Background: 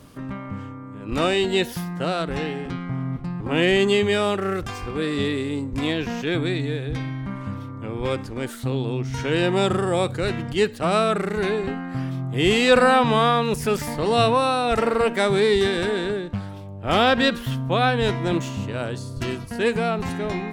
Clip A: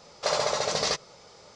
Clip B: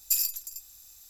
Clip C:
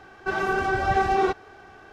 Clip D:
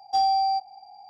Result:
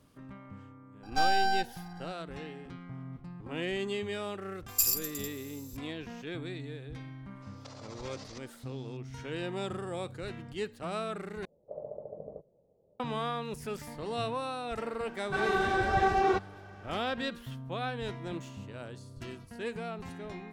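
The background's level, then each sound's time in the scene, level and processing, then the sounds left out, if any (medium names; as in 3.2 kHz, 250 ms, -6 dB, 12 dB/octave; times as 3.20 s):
background -15.5 dB
1.03 s: add D -0.5 dB + half-wave rectifier
4.68 s: add B -1 dB
7.42 s: add A -17 dB + compressor with a negative ratio -33 dBFS
11.45 s: replace with A -12 dB + Chebyshev low-pass 620 Hz, order 4
15.06 s: add C -4.5 dB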